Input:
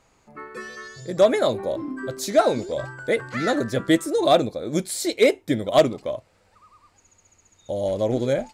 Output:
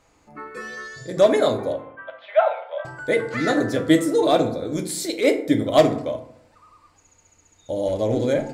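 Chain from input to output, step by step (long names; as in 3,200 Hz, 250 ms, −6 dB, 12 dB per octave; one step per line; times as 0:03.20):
0:01.73–0:02.85: Chebyshev band-pass filter 570–3,300 Hz, order 5
0:04.23–0:05.36: transient designer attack −8 dB, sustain +1 dB
feedback delay network reverb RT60 0.71 s, low-frequency decay 1.2×, high-frequency decay 0.5×, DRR 4.5 dB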